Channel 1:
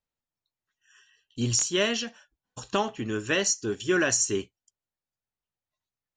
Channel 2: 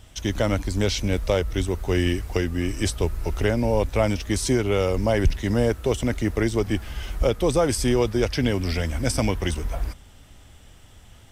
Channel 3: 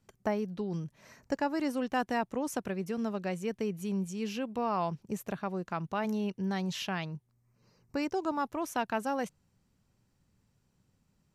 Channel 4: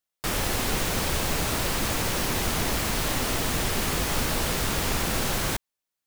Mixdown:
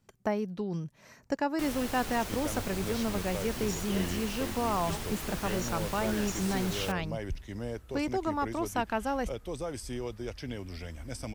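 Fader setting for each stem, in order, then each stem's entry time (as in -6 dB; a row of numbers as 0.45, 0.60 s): -16.5, -16.0, +1.0, -12.5 dB; 2.15, 2.05, 0.00, 1.35 s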